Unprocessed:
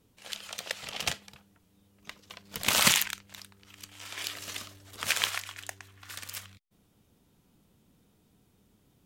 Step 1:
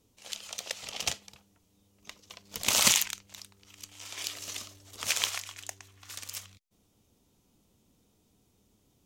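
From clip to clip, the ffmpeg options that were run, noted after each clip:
ffmpeg -i in.wav -af "equalizer=frequency=160:width_type=o:width=0.67:gain=-5,equalizer=frequency=1600:width_type=o:width=0.67:gain=-6,equalizer=frequency=6300:width_type=o:width=0.67:gain=6,volume=-1.5dB" out.wav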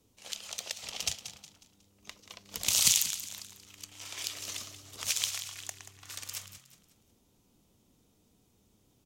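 ffmpeg -i in.wav -filter_complex "[0:a]acrossover=split=140|3000[link_01][link_02][link_03];[link_02]acompressor=threshold=-44dB:ratio=5[link_04];[link_01][link_04][link_03]amix=inputs=3:normalize=0,asplit=5[link_05][link_06][link_07][link_08][link_09];[link_06]adelay=182,afreqshift=36,volume=-12dB[link_10];[link_07]adelay=364,afreqshift=72,volume=-20.2dB[link_11];[link_08]adelay=546,afreqshift=108,volume=-28.4dB[link_12];[link_09]adelay=728,afreqshift=144,volume=-36.5dB[link_13];[link_05][link_10][link_11][link_12][link_13]amix=inputs=5:normalize=0" out.wav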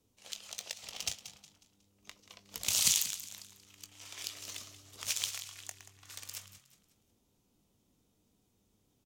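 ffmpeg -i in.wav -filter_complex "[0:a]asplit=2[link_01][link_02];[link_02]acrusher=bits=4:mix=0:aa=0.000001,volume=-10dB[link_03];[link_01][link_03]amix=inputs=2:normalize=0,asplit=2[link_04][link_05];[link_05]adelay=20,volume=-12.5dB[link_06];[link_04][link_06]amix=inputs=2:normalize=0,volume=-6dB" out.wav

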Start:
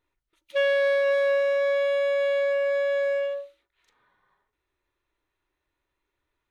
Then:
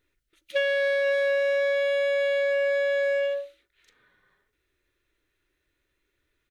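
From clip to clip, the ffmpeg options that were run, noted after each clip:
ffmpeg -i in.wav -af "firequalizer=gain_entry='entry(480,0);entry(900,-13);entry(1500,1)':delay=0.05:min_phase=1,acompressor=threshold=-26dB:ratio=6,volume=5dB" out.wav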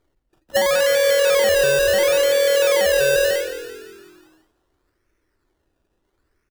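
ffmpeg -i in.wav -filter_complex "[0:a]lowpass=1700,acrusher=samples=16:mix=1:aa=0.000001:lfo=1:lforange=9.6:lforate=0.73,asplit=7[link_01][link_02][link_03][link_04][link_05][link_06][link_07];[link_02]adelay=170,afreqshift=-41,volume=-11dB[link_08];[link_03]adelay=340,afreqshift=-82,volume=-16.2dB[link_09];[link_04]adelay=510,afreqshift=-123,volume=-21.4dB[link_10];[link_05]adelay=680,afreqshift=-164,volume=-26.6dB[link_11];[link_06]adelay=850,afreqshift=-205,volume=-31.8dB[link_12];[link_07]adelay=1020,afreqshift=-246,volume=-37dB[link_13];[link_01][link_08][link_09][link_10][link_11][link_12][link_13]amix=inputs=7:normalize=0,volume=7.5dB" out.wav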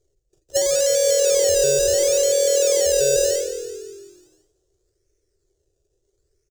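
ffmpeg -i in.wav -af "firequalizer=gain_entry='entry(140,0);entry(220,-26);entry(390,6);entry(930,-19);entry(6700,11);entry(11000,-4)':delay=0.05:min_phase=1" out.wav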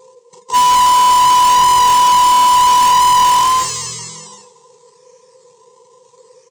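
ffmpeg -i in.wav -filter_complex "[0:a]afftfilt=real='real(if(between(b,1,1008),(2*floor((b-1)/24)+1)*24-b,b),0)':imag='imag(if(between(b,1,1008),(2*floor((b-1)/24)+1)*24-b,b),0)*if(between(b,1,1008),-1,1)':win_size=2048:overlap=0.75,highpass=230,equalizer=frequency=700:width_type=q:width=4:gain=-6,equalizer=frequency=1000:width_type=q:width=4:gain=7,equalizer=frequency=1500:width_type=q:width=4:gain=-9,equalizer=frequency=8200:width_type=q:width=4:gain=7,lowpass=frequency=8500:width=0.5412,lowpass=frequency=8500:width=1.3066,asplit=2[link_01][link_02];[link_02]highpass=frequency=720:poles=1,volume=35dB,asoftclip=type=tanh:threshold=-4.5dB[link_03];[link_01][link_03]amix=inputs=2:normalize=0,lowpass=frequency=3500:poles=1,volume=-6dB" out.wav

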